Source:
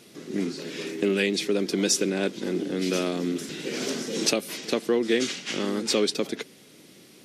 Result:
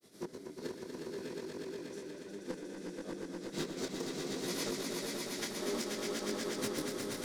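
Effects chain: companding laws mixed up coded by mu; recorder AGC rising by 74 dB/s; gate -22 dBFS, range -18 dB; peaking EQ 2.7 kHz -10 dB 0.6 oct; hum notches 50/100/150/200/250/300 Hz; peak limiter -18 dBFS, peak gain reduction 11 dB; granulator 100 ms, pitch spread up and down by 0 st; inverted gate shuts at -22 dBFS, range -24 dB; random-step tremolo; saturation -35.5 dBFS, distortion -9 dB; on a send: echo with a slow build-up 120 ms, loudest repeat 5, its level -4.5 dB; on the sum: detune thickener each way 22 cents; trim +8 dB

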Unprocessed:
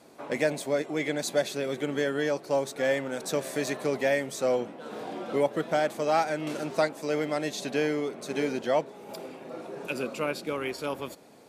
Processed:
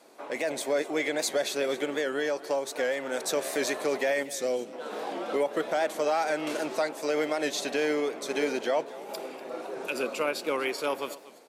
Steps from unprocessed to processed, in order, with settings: high-pass 350 Hz 12 dB/octave; 1.77–3.14 s: compression, threshold -29 dBFS, peak gain reduction 7.5 dB; 4.23–4.73 s: peaking EQ 1.1 kHz -13 dB 2.1 oct; peak limiter -22 dBFS, peak gain reduction 8 dB; level rider gain up to 4 dB; on a send: delay 243 ms -18 dB; on the sum: warped record 78 rpm, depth 100 cents

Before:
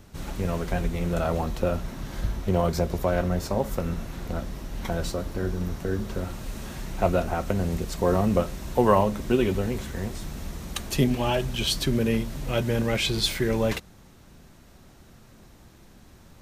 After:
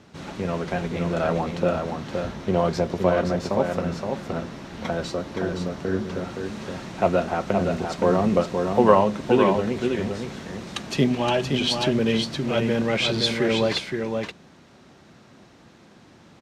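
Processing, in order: band-pass 150–5200 Hz; on a send: delay 519 ms -5 dB; on the sum: trim +3 dB

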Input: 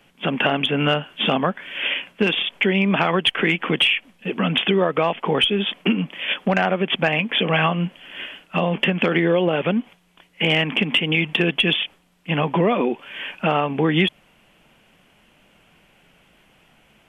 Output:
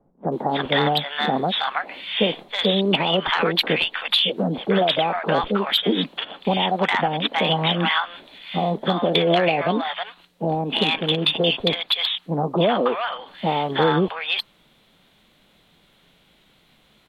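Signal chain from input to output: dynamic bell 690 Hz, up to +5 dB, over -32 dBFS, Q 0.84; formant shift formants +4 st; bands offset in time lows, highs 320 ms, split 870 Hz; trim -1.5 dB

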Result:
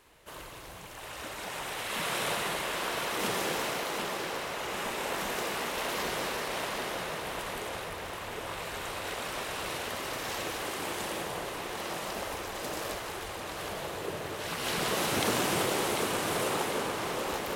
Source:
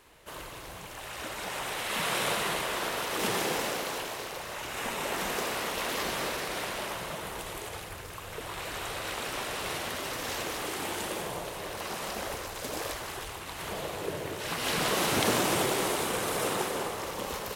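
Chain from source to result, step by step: tape echo 748 ms, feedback 76%, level -4.5 dB, low-pass 5.1 kHz; trim -2.5 dB

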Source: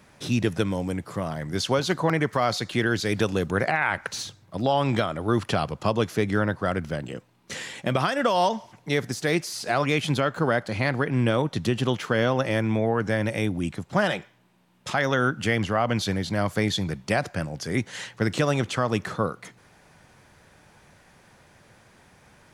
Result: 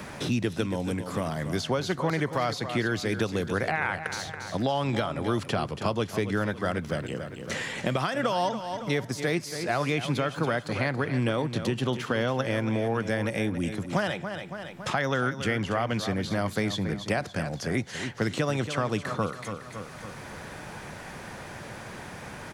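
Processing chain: feedback delay 279 ms, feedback 37%, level -12 dB; three bands compressed up and down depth 70%; trim -4 dB

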